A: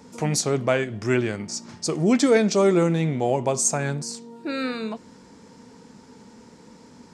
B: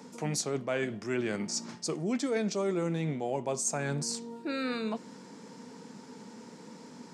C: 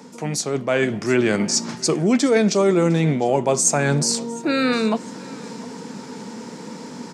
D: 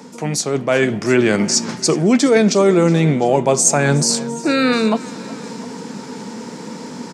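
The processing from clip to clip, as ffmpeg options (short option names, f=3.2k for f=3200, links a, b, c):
-af "highpass=f=140:w=0.5412,highpass=f=140:w=1.3066,areverse,acompressor=threshold=-30dB:ratio=4,areverse"
-af "aecho=1:1:706|1412|2118:0.0794|0.0294|0.0109,dynaudnorm=f=120:g=11:m=7dB,volume=6.5dB"
-af "aecho=1:1:368:0.1,volume=4dB"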